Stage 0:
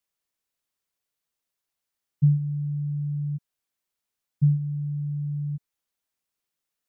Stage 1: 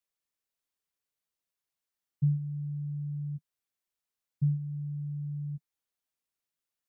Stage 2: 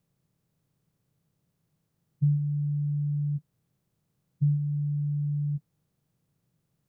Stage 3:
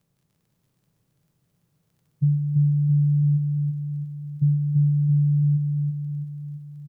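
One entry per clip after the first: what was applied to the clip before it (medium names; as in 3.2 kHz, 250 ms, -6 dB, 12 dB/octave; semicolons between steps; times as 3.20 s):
dynamic bell 160 Hz, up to -4 dB, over -33 dBFS, Q 6; trim -5.5 dB
spectral levelling over time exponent 0.6; trim +2 dB
crackle 17 per s -57 dBFS; feedback delay 335 ms, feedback 56%, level -4 dB; trim +3.5 dB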